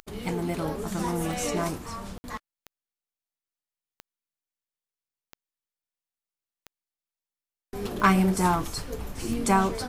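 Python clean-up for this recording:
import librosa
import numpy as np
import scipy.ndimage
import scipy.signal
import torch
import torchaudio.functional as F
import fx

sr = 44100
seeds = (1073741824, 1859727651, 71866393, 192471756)

y = fx.fix_declick_ar(x, sr, threshold=10.0)
y = fx.fix_ambience(y, sr, seeds[0], print_start_s=8.68, print_end_s=9.18, start_s=2.18, end_s=2.24)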